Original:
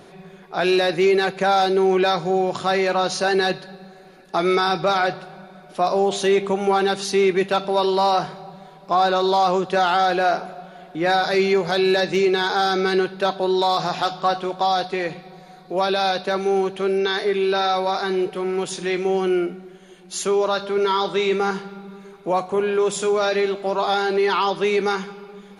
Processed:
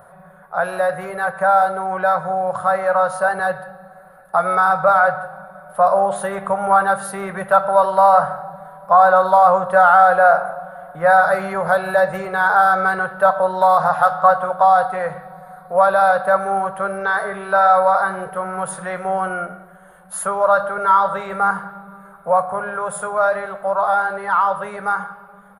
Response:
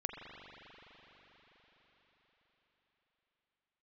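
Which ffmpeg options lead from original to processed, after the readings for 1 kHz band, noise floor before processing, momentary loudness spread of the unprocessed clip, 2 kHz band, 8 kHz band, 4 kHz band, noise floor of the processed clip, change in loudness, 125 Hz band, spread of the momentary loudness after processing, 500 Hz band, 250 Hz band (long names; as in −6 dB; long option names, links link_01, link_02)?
+7.0 dB, −45 dBFS, 9 LU, +5.5 dB, can't be measured, below −15 dB, −45 dBFS, +3.5 dB, −2.5 dB, 13 LU, +1.0 dB, −8.5 dB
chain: -filter_complex "[0:a]firequalizer=gain_entry='entry(140,0);entry(340,-25);entry(540,5);entry(770,3);entry(1400,8);entry(2400,-17);entry(6100,-22);entry(9700,6)':delay=0.05:min_phase=1,dynaudnorm=framelen=740:gausssize=13:maxgain=11.5dB,asplit=2[link_01][link_02];[1:a]atrim=start_sample=2205,afade=type=out:start_time=0.25:duration=0.01,atrim=end_sample=11466[link_03];[link_02][link_03]afir=irnorm=-1:irlink=0,volume=-3dB[link_04];[link_01][link_04]amix=inputs=2:normalize=0,volume=-4.5dB"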